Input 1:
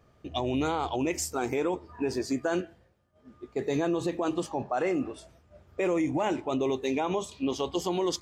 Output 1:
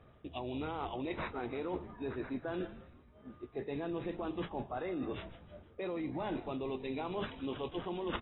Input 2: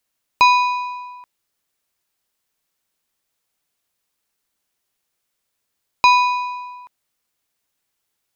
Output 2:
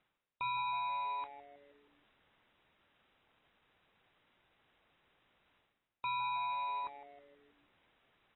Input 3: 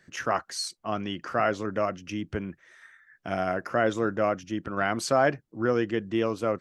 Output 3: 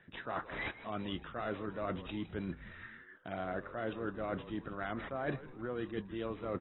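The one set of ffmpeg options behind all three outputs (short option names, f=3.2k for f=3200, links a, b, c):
-filter_complex "[0:a]areverse,acompressor=threshold=-38dB:ratio=8,areverse,asplit=6[a][b][c][d][e][f];[b]adelay=159,afreqshift=-140,volume=-15dB[g];[c]adelay=318,afreqshift=-280,volume=-20.5dB[h];[d]adelay=477,afreqshift=-420,volume=-26dB[i];[e]adelay=636,afreqshift=-560,volume=-31.5dB[j];[f]adelay=795,afreqshift=-700,volume=-37.1dB[k];[a][g][h][i][j][k]amix=inputs=6:normalize=0,acrusher=samples=7:mix=1:aa=0.000001,volume=2dB" -ar 22050 -c:a aac -b:a 16k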